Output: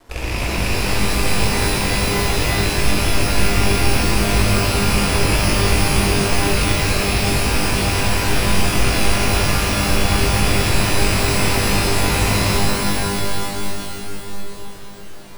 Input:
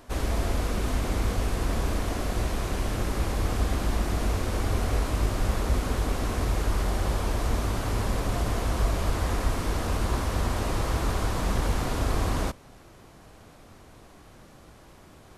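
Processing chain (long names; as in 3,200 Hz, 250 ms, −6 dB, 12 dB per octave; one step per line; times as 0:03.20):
loose part that buzzes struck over −27 dBFS, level −17 dBFS
half-wave rectification
reverb with rising layers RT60 3.4 s, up +12 semitones, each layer −2 dB, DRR −6.5 dB
level +2 dB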